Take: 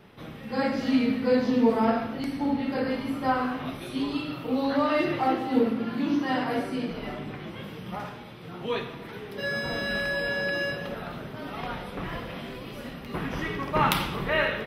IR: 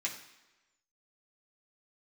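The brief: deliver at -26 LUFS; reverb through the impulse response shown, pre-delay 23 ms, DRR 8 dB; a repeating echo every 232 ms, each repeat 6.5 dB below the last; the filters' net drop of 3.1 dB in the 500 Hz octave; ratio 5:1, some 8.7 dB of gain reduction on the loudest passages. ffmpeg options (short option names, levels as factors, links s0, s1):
-filter_complex "[0:a]equalizer=f=500:t=o:g=-3.5,acompressor=threshold=0.0398:ratio=5,aecho=1:1:232|464|696|928|1160|1392:0.473|0.222|0.105|0.0491|0.0231|0.0109,asplit=2[s0][s1];[1:a]atrim=start_sample=2205,adelay=23[s2];[s1][s2]afir=irnorm=-1:irlink=0,volume=0.282[s3];[s0][s3]amix=inputs=2:normalize=0,volume=2"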